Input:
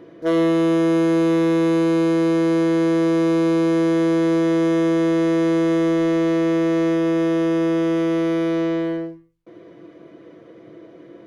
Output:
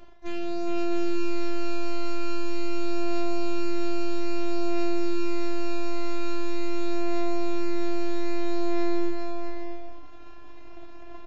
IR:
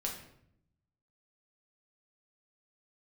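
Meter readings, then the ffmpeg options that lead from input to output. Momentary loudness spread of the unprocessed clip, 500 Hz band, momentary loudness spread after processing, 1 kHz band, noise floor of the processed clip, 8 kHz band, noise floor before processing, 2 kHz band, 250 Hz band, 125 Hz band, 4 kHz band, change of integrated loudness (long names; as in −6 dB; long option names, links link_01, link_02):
3 LU, −11.5 dB, 9 LU, −6.5 dB, −36 dBFS, can't be measured, −45 dBFS, −9.0 dB, −12.5 dB, below −10 dB, −5.5 dB, −12.5 dB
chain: -af "highshelf=frequency=2300:gain=6,bandreject=frequency=50:width_type=h:width=6,bandreject=frequency=100:width_type=h:width=6,bandreject=frequency=150:width_type=h:width=6,bandreject=frequency=200:width_type=h:width=6,bandreject=frequency=250:width_type=h:width=6,bandreject=frequency=300:width_type=h:width=6,bandreject=frequency=350:width_type=h:width=6,areverse,acompressor=threshold=-27dB:ratio=16,areverse,aeval=exprs='0.075*(cos(1*acos(clip(val(0)/0.075,-1,1)))-cos(1*PI/2))+0.00841*(cos(4*acos(clip(val(0)/0.075,-1,1)))-cos(4*PI/2))+0.00376*(cos(7*acos(clip(val(0)/0.075,-1,1)))-cos(7*PI/2))+0.00266*(cos(8*acos(clip(val(0)/0.075,-1,1)))-cos(8*PI/2))':channel_layout=same,aeval=exprs='abs(val(0))':channel_layout=same,afftfilt=real='hypot(re,im)*cos(PI*b)':imag='0':win_size=512:overlap=0.75,flanger=delay=5.1:depth=1.7:regen=45:speed=0.25:shape=triangular,aecho=1:1:410|656|803.6|892.2|945.3:0.631|0.398|0.251|0.158|0.1,aresample=16000,aresample=44100,volume=5.5dB"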